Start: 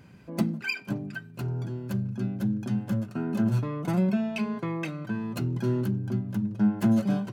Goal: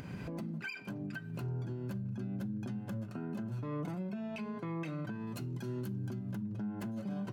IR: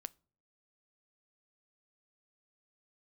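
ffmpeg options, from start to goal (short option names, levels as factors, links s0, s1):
-filter_complex "[0:a]asetnsamples=n=441:p=0,asendcmd='5.27 highshelf g 6.5;6.31 highshelf g -4.5',highshelf=f=3700:g=-4.5,acompressor=mode=upward:threshold=0.0447:ratio=2.5,alimiter=level_in=2.37:limit=0.0631:level=0:latency=1:release=205,volume=0.422[s0];[1:a]atrim=start_sample=2205[s1];[s0][s1]afir=irnorm=-1:irlink=0,volume=1.5"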